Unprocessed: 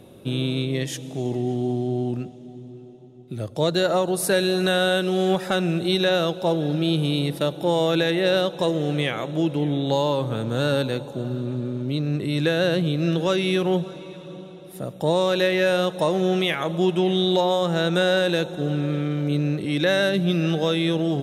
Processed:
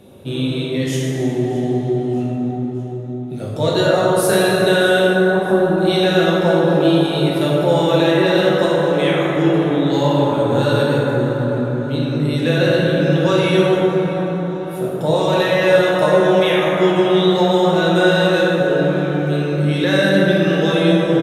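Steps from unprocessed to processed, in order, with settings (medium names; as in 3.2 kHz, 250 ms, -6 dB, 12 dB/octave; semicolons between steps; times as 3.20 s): reverb removal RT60 0.57 s; 5.07–5.78 s: Chebyshev low-pass 1.1 kHz, order 4; feedback delay 622 ms, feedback 51%, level -19 dB; plate-style reverb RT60 4.9 s, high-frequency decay 0.3×, DRR -7.5 dB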